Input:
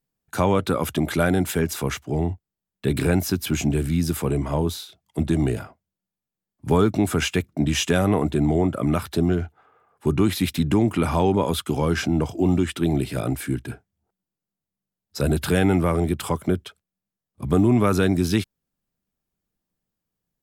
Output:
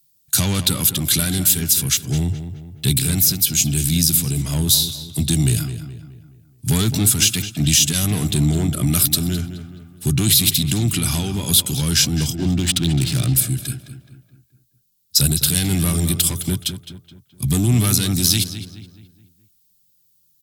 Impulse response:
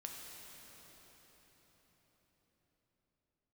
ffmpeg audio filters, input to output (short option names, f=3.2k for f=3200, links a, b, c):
-filter_complex "[0:a]asettb=1/sr,asplit=3[a][b][c];[a]atrim=end=8.904[d];[b]atrim=start=8.9:end=9.41,asetpts=PTS-STARTPTS,afade=t=in:d=0.004:c=qsin,afade=t=out:st=0.506:d=0.004:c=qsin,highshelf=f=9.7k:g=7[e];[c]atrim=start=9.406[f];[d][e]acrossfade=d=0.004:c1=hsin:c2=qsin[g];[g][f]acrossfade=d=0.004:c1=qsin:c2=hsin,asettb=1/sr,asplit=3[h][i][j];[h]atrim=end=10.964[k];[i]atrim=start=10.96:end=11.5,asetpts=PTS-STARTPTS,afade=t=in:d=0.004:c=qsin,afade=t=out:st=0.536:d=0.004:c=qsin,acompressor=threshold=-20dB:ratio=6[l];[j]atrim=start=11.496[m];[k][l]acrossfade=d=0.004:c1=hsin:c2=qsin[n];[n][m]acrossfade=d=0.004:c1=qsin:c2=hsin,asoftclip=type=tanh:threshold=-15dB,crystalizer=i=9.5:c=0,asettb=1/sr,asplit=3[o][p][q];[o]atrim=end=12.354[r];[p]atrim=start=12.35:end=13.35,asetpts=PTS-STARTPTS,afade=t=in:d=0.004:c=qsin,afade=t=out:st=0.996:d=0.004:c=qsin,adynamicsmooth=sensitivity=4:basefreq=640[s];[q]atrim=start=13.346[t];[r][s]acrossfade=d=0.004:c1=hsin:c2=qsin[u];[u][t]acrossfade=d=0.004:c1=qsin:c2=hsin,alimiter=limit=-4.5dB:level=0:latency=1:release=403,equalizer=f=125:t=o:w=1:g=10,equalizer=f=500:t=o:w=1:g=-10,equalizer=f=1k:t=o:w=1:g=-10,equalizer=f=2k:t=o:w=1:g=-6,equalizer=f=4k:t=o:w=1:g=5,asplit=2[v][w];[w]adelay=212,lowpass=f=2.8k:p=1,volume=-10dB,asplit=2[x][y];[y]adelay=212,lowpass=f=2.8k:p=1,volume=0.46,asplit=2[z][aa];[aa]adelay=212,lowpass=f=2.8k:p=1,volume=0.46,asplit=2[ab][ac];[ac]adelay=212,lowpass=f=2.8k:p=1,volume=0.46,asplit=2[ad][ae];[ae]adelay=212,lowpass=f=2.8k:p=1,volume=0.46[af];[v][x][z][ab][ad][af]amix=inputs=6:normalize=0,volume=1dB"